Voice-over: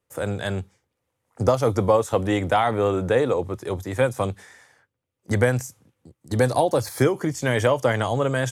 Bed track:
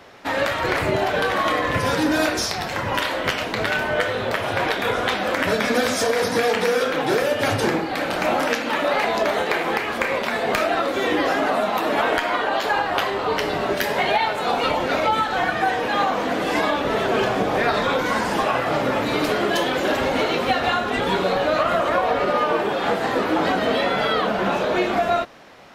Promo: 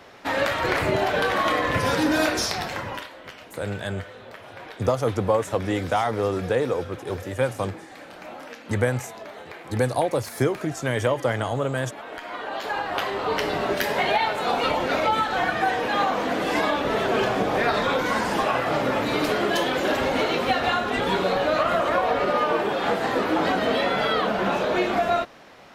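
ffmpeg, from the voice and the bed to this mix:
-filter_complex "[0:a]adelay=3400,volume=-3dB[a];[1:a]volume=15dB,afade=t=out:st=2.57:d=0.52:silence=0.141254,afade=t=in:st=12.06:d=1.35:silence=0.149624[b];[a][b]amix=inputs=2:normalize=0"

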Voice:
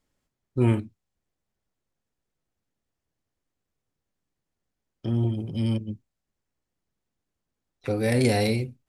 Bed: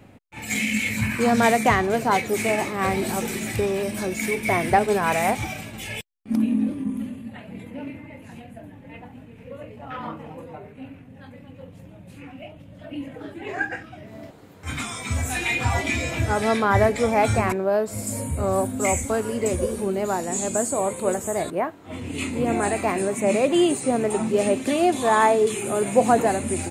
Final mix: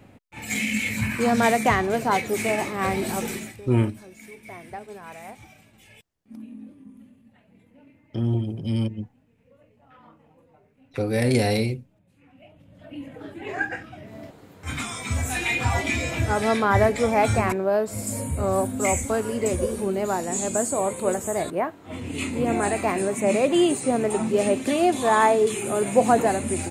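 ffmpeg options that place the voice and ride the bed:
-filter_complex "[0:a]adelay=3100,volume=1dB[a];[1:a]volume=17dB,afade=t=out:st=3.31:d=0.25:silence=0.133352,afade=t=in:st=12.17:d=1.35:silence=0.11885[b];[a][b]amix=inputs=2:normalize=0"

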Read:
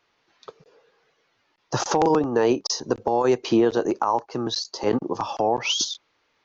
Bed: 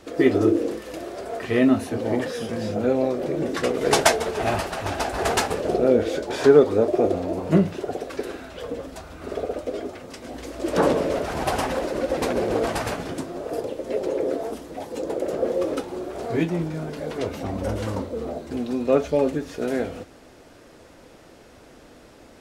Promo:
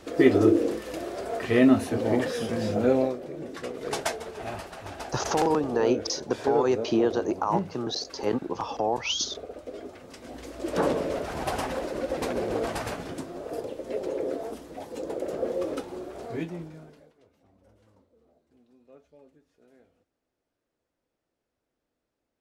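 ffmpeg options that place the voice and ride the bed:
-filter_complex "[0:a]adelay=3400,volume=-4.5dB[a];[1:a]volume=6dB,afade=t=out:st=2.97:d=0.23:silence=0.266073,afade=t=in:st=9.52:d=0.8:silence=0.473151,afade=t=out:st=15.92:d=1.21:silence=0.0354813[b];[a][b]amix=inputs=2:normalize=0"

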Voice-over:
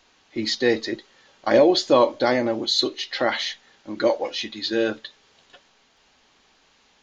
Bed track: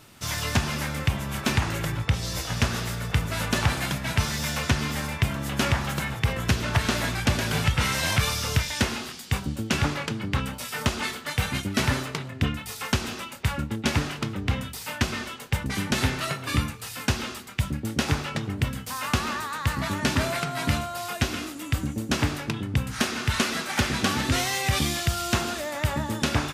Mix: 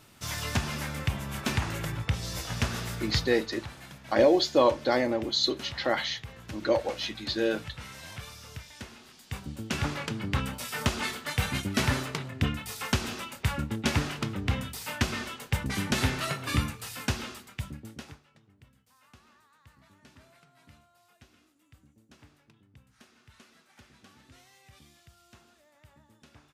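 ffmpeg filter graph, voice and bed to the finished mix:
-filter_complex "[0:a]adelay=2650,volume=-5dB[a];[1:a]volume=11.5dB,afade=t=out:st=3.12:d=0.32:silence=0.199526,afade=t=in:st=9.01:d=1.29:silence=0.149624,afade=t=out:st=16.75:d=1.45:silence=0.0334965[b];[a][b]amix=inputs=2:normalize=0"

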